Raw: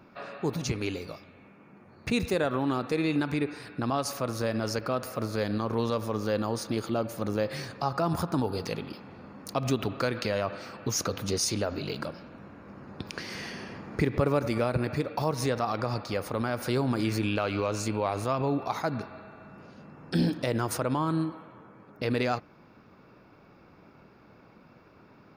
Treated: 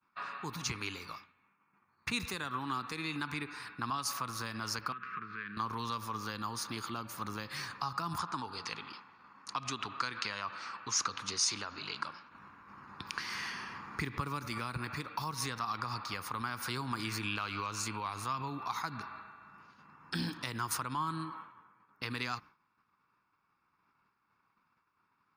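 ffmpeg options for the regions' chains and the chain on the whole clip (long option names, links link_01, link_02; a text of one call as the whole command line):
ffmpeg -i in.wav -filter_complex "[0:a]asettb=1/sr,asplit=3[link_01][link_02][link_03];[link_01]atrim=end=4.924[link_04];[link_02]atrim=start=4.92:end=5.57,asetpts=PTS-STARTPTS,afade=type=in:duration=0.004:curve=qsin,afade=type=out:start_time=0.646:duration=0.004:curve=qsin,acompressor=threshold=-35dB:ratio=3:attack=3.2:release=140:knee=1:detection=peak,asuperstop=centerf=700:order=8:qfactor=0.96,highpass=130,equalizer=frequency=180:width_type=q:width=4:gain=9,equalizer=frequency=290:width_type=q:width=4:gain=-6,equalizer=frequency=500:width_type=q:width=4:gain=4,equalizer=frequency=910:width_type=q:width=4:gain=3,equalizer=frequency=1600:width_type=q:width=4:gain=7,equalizer=frequency=2400:width_type=q:width=4:gain=5,lowpass=frequency=2800:width=0.5412,lowpass=frequency=2800:width=1.3066[link_05];[link_03]atrim=start=5.566[link_06];[link_04][link_05]acrossfade=duration=0.004:curve1=hsin:curve2=qsin[link_07];[link_07][link_06]acrossfade=duration=0.004:curve1=qsin:curve2=hsin,asettb=1/sr,asplit=3[link_08][link_09][link_10];[link_08]atrim=end=8.184[link_11];[link_09]atrim=start=8.18:end=12.31,asetpts=PTS-STARTPTS,afade=type=in:duration=0.004:curve=qsin,afade=type=out:start_time=4.126:duration=0.004:curve=qsin,lowpass=frequency=8200:width=0.5412,lowpass=frequency=8200:width=1.3066,lowshelf=frequency=220:gain=-9[link_12];[link_10]atrim=start=12.306[link_13];[link_11][link_12]acrossfade=duration=0.004:curve1=hsin:curve2=qsin[link_14];[link_14][link_13]acrossfade=duration=0.004:curve1=qsin:curve2=hsin,acrossover=split=320|3000[link_15][link_16][link_17];[link_16]acompressor=threshold=-34dB:ratio=6[link_18];[link_15][link_18][link_17]amix=inputs=3:normalize=0,agate=range=-33dB:threshold=-43dB:ratio=3:detection=peak,lowshelf=frequency=790:width_type=q:width=3:gain=-9.5,volume=-1dB" out.wav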